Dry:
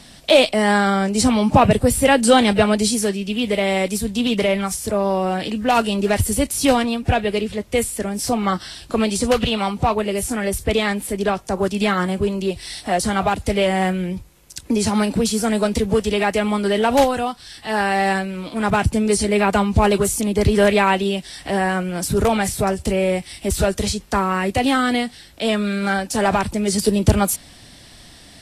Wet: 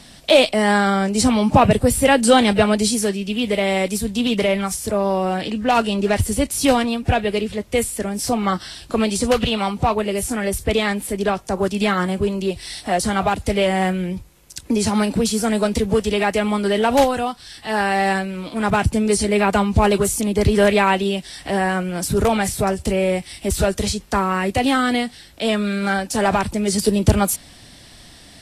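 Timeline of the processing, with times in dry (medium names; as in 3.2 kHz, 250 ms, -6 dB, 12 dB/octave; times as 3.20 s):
5.41–6.52 s: treble shelf 12 kHz -11 dB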